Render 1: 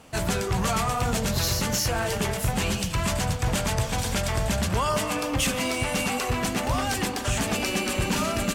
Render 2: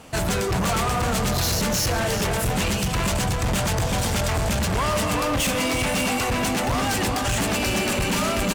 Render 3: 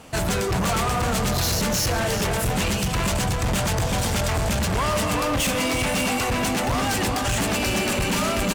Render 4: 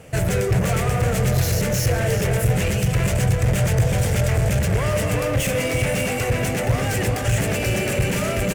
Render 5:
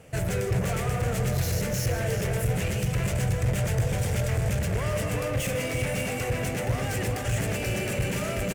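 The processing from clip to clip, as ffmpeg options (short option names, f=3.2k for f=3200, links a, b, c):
-filter_complex "[0:a]asplit=2[a][b];[b]adelay=384.8,volume=-6dB,highshelf=f=4k:g=-8.66[c];[a][c]amix=inputs=2:normalize=0,asoftclip=type=hard:threshold=-25.5dB,volume=5.5dB"
-af anull
-af "equalizer=f=125:t=o:w=1:g=11,equalizer=f=250:t=o:w=1:g=-7,equalizer=f=500:t=o:w=1:g=8,equalizer=f=1k:t=o:w=1:g=-10,equalizer=f=2k:t=o:w=1:g=5,equalizer=f=4k:t=o:w=1:g=-8"
-af "aecho=1:1:154:0.237,volume=-7dB"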